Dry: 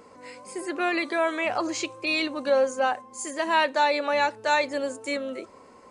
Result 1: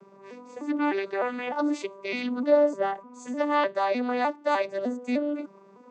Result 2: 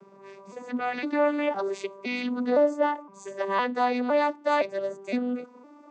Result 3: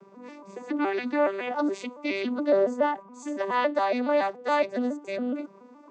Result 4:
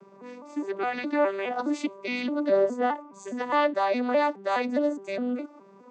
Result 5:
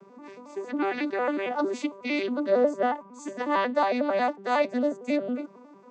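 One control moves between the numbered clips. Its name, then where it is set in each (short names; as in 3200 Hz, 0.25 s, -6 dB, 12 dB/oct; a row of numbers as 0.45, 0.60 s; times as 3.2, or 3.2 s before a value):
arpeggiated vocoder, a note every: 303, 512, 140, 207, 91 ms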